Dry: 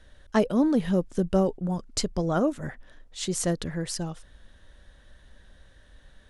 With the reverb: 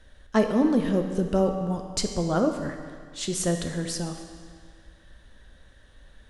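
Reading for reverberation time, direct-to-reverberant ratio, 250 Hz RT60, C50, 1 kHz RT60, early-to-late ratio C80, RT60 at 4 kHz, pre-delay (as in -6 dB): 1.9 s, 4.0 dB, 2.0 s, 6.0 dB, 1.9 s, 7.0 dB, 1.8 s, 7 ms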